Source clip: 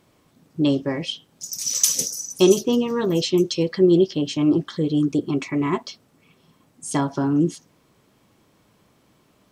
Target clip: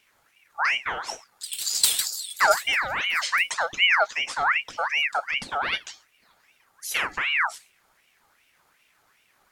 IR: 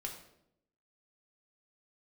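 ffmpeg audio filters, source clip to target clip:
-filter_complex "[0:a]asplit=2[s0][s1];[s1]aderivative[s2];[1:a]atrim=start_sample=2205,atrim=end_sample=6174[s3];[s2][s3]afir=irnorm=-1:irlink=0,volume=1.06[s4];[s0][s4]amix=inputs=2:normalize=0,aeval=exprs='val(0)*sin(2*PI*1800*n/s+1800*0.45/2.6*sin(2*PI*2.6*n/s))':c=same,volume=0.794"

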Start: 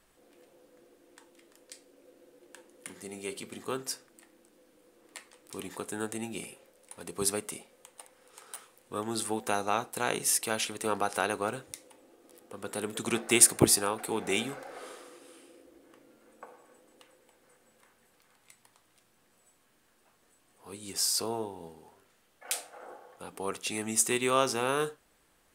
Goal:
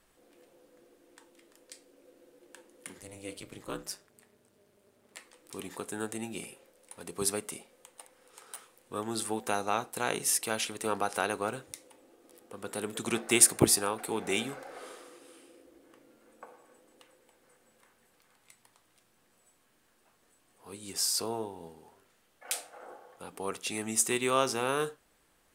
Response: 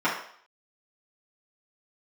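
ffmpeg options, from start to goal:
-filter_complex "[0:a]asettb=1/sr,asplit=3[s0][s1][s2];[s0]atrim=end=2.984[s3];[s1]atrim=start=2.98:end=5.17,asetpts=PTS-STARTPTS,afade=t=in:d=0.004:c=qsin,afade=t=out:st=2.186:d=0.004:c=qsin,aeval=exprs='val(0)*sin(2*PI*100*n/s)':c=same[s4];[s2]atrim=start=5.166[s5];[s3][s4]acrossfade=d=0.004:c1=hsin:c2=qsin[s6];[s6][s5]acrossfade=d=0.004:c1=qsin:c2=hsin,volume=0.891"

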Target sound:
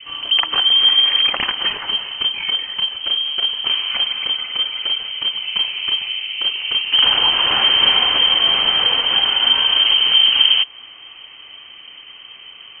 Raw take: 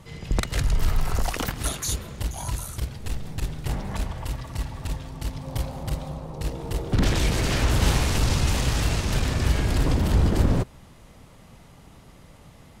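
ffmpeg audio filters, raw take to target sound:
-filter_complex "[0:a]adynamicequalizer=threshold=0.00398:dfrequency=2200:dqfactor=3:tfrequency=2200:tqfactor=3:attack=5:release=100:ratio=0.375:range=2.5:mode=boostabove:tftype=bell,lowpass=f=2700:t=q:w=0.5098,lowpass=f=2700:t=q:w=0.6013,lowpass=f=2700:t=q:w=0.9,lowpass=f=2700:t=q:w=2.563,afreqshift=-3200,lowshelf=f=490:g=5,asplit=2[s0][s1];[s1]acompressor=threshold=0.0355:ratio=6,volume=0.891[s2];[s0][s2]amix=inputs=2:normalize=0,bandreject=f=640:w=14,volume=1.58"

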